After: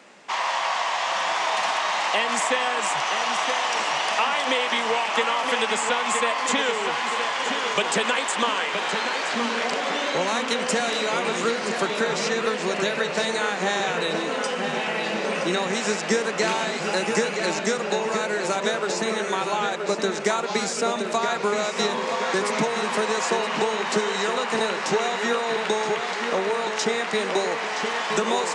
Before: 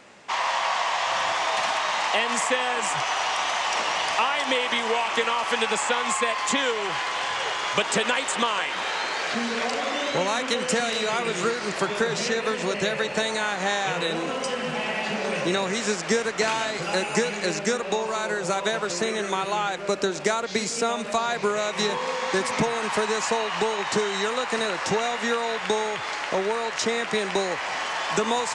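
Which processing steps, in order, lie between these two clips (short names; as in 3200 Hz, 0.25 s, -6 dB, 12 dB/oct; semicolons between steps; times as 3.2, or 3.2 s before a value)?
HPF 160 Hz 24 dB/oct; darkening echo 0.971 s, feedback 61%, low-pass 4500 Hz, level -6 dB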